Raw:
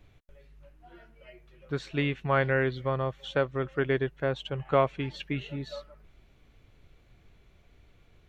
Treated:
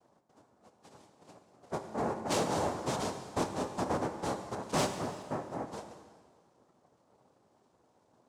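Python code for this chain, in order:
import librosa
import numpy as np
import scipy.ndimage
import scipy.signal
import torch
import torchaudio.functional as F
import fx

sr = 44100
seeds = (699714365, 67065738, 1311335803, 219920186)

y = scipy.signal.sosfilt(scipy.signal.butter(4, 1200.0, 'lowpass', fs=sr, output='sos'), x)
y = fx.noise_vocoder(y, sr, seeds[0], bands=2)
y = 10.0 ** (-19.0 / 20.0) * np.tanh(y / 10.0 ** (-19.0 / 20.0))
y = fx.rev_plate(y, sr, seeds[1], rt60_s=1.7, hf_ratio=0.95, predelay_ms=0, drr_db=6.0)
y = y * librosa.db_to_amplitude(-4.0)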